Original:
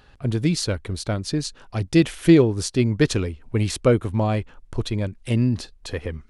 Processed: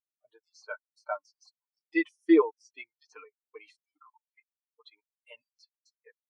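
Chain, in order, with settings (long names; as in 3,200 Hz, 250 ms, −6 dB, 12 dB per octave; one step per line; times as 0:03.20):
auto-filter high-pass square 2.4 Hz 950–5,700 Hz
de-essing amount 65%
comb filter 6.6 ms, depth 72%
noise reduction from a noise print of the clip's start 14 dB
every bin expanded away from the loudest bin 2.5 to 1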